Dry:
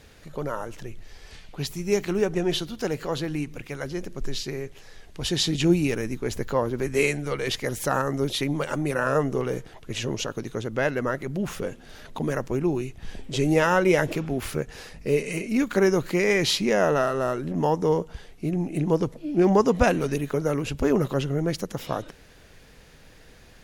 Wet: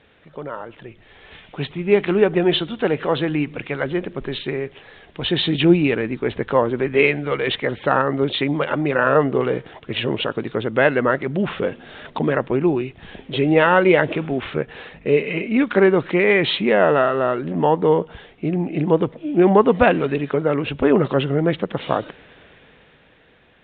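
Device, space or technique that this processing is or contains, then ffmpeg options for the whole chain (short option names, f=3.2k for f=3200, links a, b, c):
Bluetooth headset: -af "highpass=f=200:p=1,dynaudnorm=f=110:g=21:m=11.5dB,aresample=8000,aresample=44100" -ar 16000 -c:a sbc -b:a 64k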